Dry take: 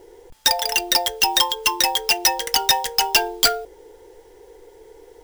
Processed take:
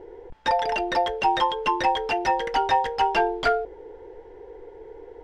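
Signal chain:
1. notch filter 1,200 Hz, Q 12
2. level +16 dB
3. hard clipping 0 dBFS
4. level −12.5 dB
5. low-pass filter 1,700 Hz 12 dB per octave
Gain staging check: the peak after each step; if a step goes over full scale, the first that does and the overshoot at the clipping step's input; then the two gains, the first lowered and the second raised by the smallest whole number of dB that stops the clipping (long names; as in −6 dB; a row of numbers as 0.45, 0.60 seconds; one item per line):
−7.5, +8.5, 0.0, −12.5, −12.0 dBFS
step 2, 8.5 dB
step 2 +7 dB, step 4 −3.5 dB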